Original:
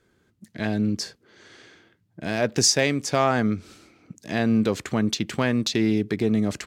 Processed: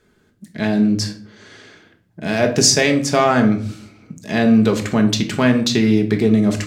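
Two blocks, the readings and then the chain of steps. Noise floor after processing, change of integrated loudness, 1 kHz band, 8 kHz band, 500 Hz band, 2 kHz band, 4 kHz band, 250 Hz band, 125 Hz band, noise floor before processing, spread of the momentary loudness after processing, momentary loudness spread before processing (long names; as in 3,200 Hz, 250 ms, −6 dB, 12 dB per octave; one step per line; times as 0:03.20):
−59 dBFS, +7.0 dB, +6.0 dB, +6.0 dB, +7.0 dB, +6.5 dB, +6.0 dB, +8.0 dB, +7.0 dB, −67 dBFS, 10 LU, 11 LU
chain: rectangular room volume 640 cubic metres, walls furnished, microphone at 1.4 metres
level +5 dB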